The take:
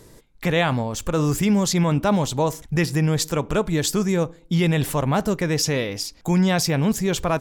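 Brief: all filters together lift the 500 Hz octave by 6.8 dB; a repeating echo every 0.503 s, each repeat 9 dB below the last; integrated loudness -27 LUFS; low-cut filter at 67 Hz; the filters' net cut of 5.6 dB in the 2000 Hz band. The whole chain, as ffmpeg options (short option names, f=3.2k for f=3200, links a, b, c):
-af "highpass=67,equalizer=f=500:t=o:g=8.5,equalizer=f=2k:t=o:g=-7.5,aecho=1:1:503|1006|1509|2012:0.355|0.124|0.0435|0.0152,volume=-8.5dB"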